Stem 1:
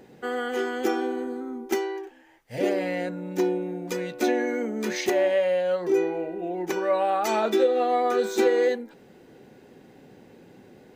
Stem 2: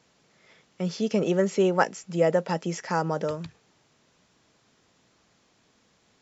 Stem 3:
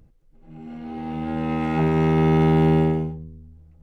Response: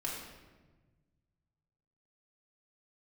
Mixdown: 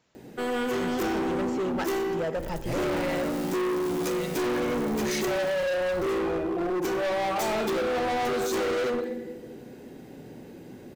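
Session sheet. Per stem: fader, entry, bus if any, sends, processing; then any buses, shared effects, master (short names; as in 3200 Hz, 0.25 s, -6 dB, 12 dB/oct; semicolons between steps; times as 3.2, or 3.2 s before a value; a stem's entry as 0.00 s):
-2.5 dB, 0.15 s, send -4 dB, low shelf 470 Hz +6 dB
-6.5 dB, 0.00 s, send -11.5 dB, tone controls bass +1 dB, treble -8 dB
-19.0 dB, 2.35 s, send -3.5 dB, infinite clipping; three-band expander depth 100%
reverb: on, RT60 1.3 s, pre-delay 3 ms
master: high shelf 6000 Hz +8.5 dB; overloaded stage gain 25.5 dB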